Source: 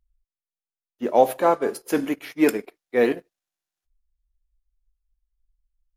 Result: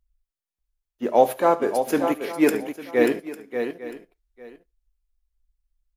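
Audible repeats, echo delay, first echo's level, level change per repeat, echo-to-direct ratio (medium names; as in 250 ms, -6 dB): 5, 71 ms, -18.0 dB, no regular repeats, -6.5 dB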